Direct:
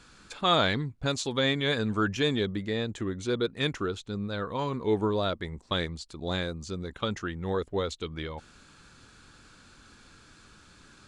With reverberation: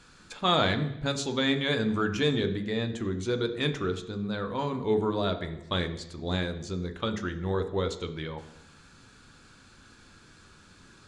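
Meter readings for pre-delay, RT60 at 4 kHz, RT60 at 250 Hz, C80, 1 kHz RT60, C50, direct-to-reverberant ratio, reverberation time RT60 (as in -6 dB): 9 ms, 0.85 s, 0.80 s, 14.0 dB, 0.85 s, 11.5 dB, 6.5 dB, 0.85 s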